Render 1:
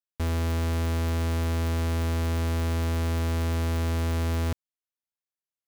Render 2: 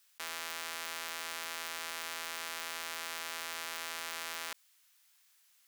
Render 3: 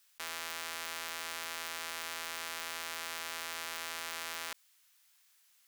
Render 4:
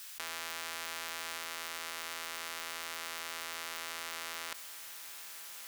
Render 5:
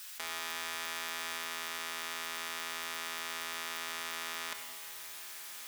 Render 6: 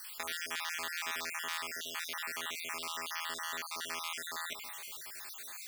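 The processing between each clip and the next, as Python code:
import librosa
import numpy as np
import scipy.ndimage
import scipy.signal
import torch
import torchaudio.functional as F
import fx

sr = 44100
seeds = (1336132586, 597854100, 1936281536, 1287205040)

y1 = scipy.signal.sosfilt(scipy.signal.butter(2, 1400.0, 'highpass', fs=sr, output='sos'), x)
y1 = fx.env_flatten(y1, sr, amount_pct=50)
y2 = fx.low_shelf(y1, sr, hz=63.0, db=11.0)
y3 = fx.over_compress(y2, sr, threshold_db=-51.0, ratio=-1.0)
y3 = y3 + 10.0 ** (-14.5 / 20.0) * np.pad(y3, (int(1181 * sr / 1000.0), 0))[:len(y3)]
y3 = y3 * 10.0 ** (10.0 / 20.0)
y4 = fx.room_shoebox(y3, sr, seeds[0], volume_m3=2300.0, walls='mixed', distance_m=1.4)
y5 = fx.spec_dropout(y4, sr, seeds[1], share_pct=51)
y5 = y5 * 10.0 ** (3.0 / 20.0)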